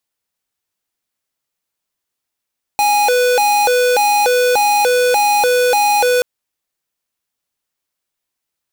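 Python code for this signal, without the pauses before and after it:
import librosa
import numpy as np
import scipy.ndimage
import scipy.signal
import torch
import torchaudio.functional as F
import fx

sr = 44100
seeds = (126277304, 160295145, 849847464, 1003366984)

y = fx.siren(sr, length_s=3.43, kind='hi-lo', low_hz=495.0, high_hz=827.0, per_s=1.7, wave='square', level_db=-13.0)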